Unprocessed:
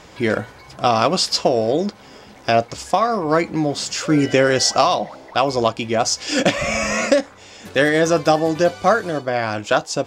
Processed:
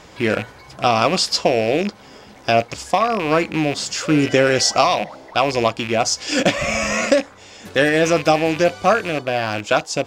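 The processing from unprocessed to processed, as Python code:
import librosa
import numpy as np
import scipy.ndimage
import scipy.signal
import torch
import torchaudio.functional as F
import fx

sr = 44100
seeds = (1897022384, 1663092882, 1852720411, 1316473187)

y = fx.rattle_buzz(x, sr, strikes_db=-31.0, level_db=-16.0)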